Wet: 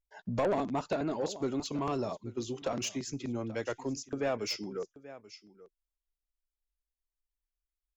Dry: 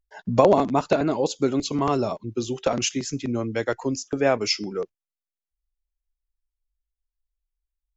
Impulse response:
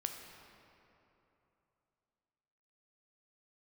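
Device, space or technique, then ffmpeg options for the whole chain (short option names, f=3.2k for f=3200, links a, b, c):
saturation between pre-emphasis and de-emphasis: -af "highshelf=f=4.2k:g=7.5,aecho=1:1:832:0.112,asoftclip=type=tanh:threshold=-15dB,highshelf=f=4.2k:g=-7.5,volume=-8.5dB"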